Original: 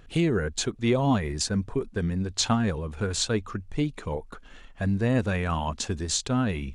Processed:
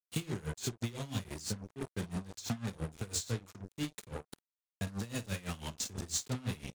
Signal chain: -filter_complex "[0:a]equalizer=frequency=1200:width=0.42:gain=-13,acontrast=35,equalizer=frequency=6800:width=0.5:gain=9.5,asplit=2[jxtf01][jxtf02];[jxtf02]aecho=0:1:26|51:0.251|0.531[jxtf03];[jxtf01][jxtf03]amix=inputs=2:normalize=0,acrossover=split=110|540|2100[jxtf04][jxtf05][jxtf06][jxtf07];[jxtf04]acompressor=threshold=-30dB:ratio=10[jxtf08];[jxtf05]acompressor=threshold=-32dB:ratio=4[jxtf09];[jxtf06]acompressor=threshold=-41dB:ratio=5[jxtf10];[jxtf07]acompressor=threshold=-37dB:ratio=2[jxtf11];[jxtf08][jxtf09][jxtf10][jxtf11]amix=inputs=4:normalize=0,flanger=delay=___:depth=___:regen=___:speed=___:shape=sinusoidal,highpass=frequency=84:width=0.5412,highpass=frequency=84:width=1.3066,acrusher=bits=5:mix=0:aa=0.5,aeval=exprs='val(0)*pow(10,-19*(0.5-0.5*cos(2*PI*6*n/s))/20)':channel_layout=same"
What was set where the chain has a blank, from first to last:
4.1, 6.5, 68, 0.42